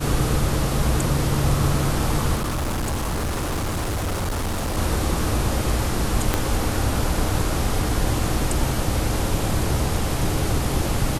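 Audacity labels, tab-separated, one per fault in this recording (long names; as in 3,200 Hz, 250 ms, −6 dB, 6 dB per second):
2.350000	4.780000	clipping −21.5 dBFS
6.340000	6.340000	click −4 dBFS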